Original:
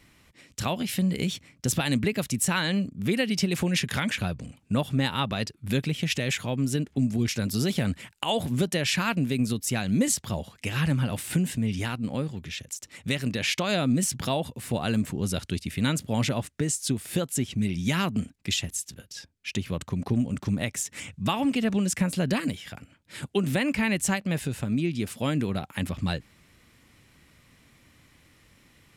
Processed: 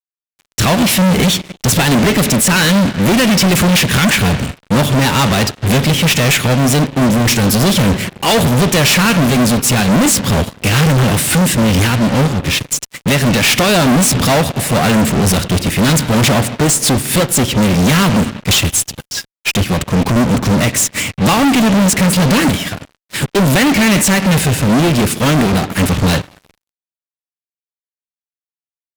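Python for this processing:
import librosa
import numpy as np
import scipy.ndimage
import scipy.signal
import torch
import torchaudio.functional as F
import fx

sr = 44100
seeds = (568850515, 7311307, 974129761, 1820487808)

y = fx.rev_spring(x, sr, rt60_s=2.0, pass_ms=(42, 49), chirp_ms=35, drr_db=15.0)
y = fx.fuzz(y, sr, gain_db=44.0, gate_db=-45.0)
y = fx.upward_expand(y, sr, threshold_db=-26.0, expansion=2.5)
y = F.gain(torch.from_numpy(y), 4.5).numpy()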